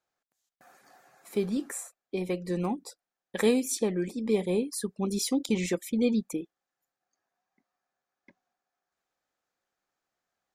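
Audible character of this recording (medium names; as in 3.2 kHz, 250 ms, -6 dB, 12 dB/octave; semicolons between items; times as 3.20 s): noise floor -91 dBFS; spectral tilt -5.0 dB/octave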